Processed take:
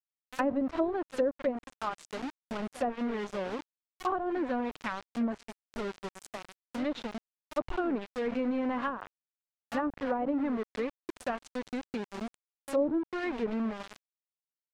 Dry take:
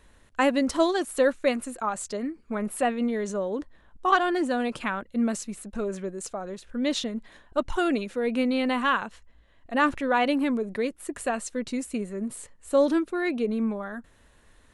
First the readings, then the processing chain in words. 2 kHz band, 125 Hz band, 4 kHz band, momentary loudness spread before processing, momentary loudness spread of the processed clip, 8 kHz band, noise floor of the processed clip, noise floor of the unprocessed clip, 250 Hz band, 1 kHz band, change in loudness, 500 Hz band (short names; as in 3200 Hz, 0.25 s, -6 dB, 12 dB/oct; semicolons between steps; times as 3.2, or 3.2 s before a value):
-10.5 dB, n/a, -11.5 dB, 12 LU, 12 LU, -16.0 dB, under -85 dBFS, -58 dBFS, -6.0 dB, -8.0 dB, -7.0 dB, -6.5 dB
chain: reverse echo 66 ms -13.5 dB; sample gate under -28.5 dBFS; treble ducked by the level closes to 650 Hz, closed at -18.5 dBFS; gain -5.5 dB